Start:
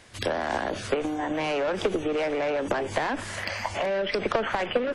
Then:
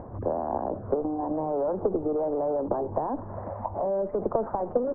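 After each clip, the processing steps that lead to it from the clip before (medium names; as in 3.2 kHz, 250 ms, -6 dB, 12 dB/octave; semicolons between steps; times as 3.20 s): steep low-pass 1 kHz 36 dB/octave; upward compressor, threshold -29 dBFS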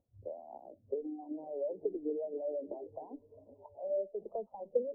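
repeats whose band climbs or falls 388 ms, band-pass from 200 Hz, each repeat 0.7 oct, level -4 dB; spectral contrast expander 2.5:1; trim -7 dB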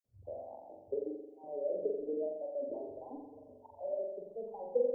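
random holes in the spectrogram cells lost 37%; flutter echo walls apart 7.5 m, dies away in 0.98 s; trim -1 dB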